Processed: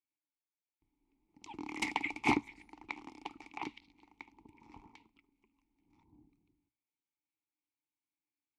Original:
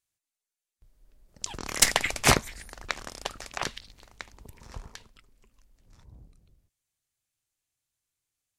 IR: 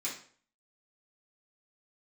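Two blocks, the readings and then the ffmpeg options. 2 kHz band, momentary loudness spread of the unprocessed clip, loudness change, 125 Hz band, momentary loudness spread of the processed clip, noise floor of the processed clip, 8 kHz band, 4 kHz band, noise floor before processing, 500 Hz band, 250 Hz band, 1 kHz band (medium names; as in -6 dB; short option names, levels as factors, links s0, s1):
-9.0 dB, 24 LU, -10.5 dB, -16.0 dB, 23 LU, under -85 dBFS, -26.5 dB, -17.5 dB, under -85 dBFS, -12.5 dB, -1.5 dB, -7.0 dB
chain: -filter_complex "[0:a]asplit=3[s0][s1][s2];[s0]bandpass=f=300:t=q:w=8,volume=1[s3];[s1]bandpass=f=870:t=q:w=8,volume=0.501[s4];[s2]bandpass=f=2240:t=q:w=8,volume=0.355[s5];[s3][s4][s5]amix=inputs=3:normalize=0,lowshelf=f=78:g=5.5,bandreject=f=60:t=h:w=6,bandreject=f=120:t=h:w=6,volume=1.88"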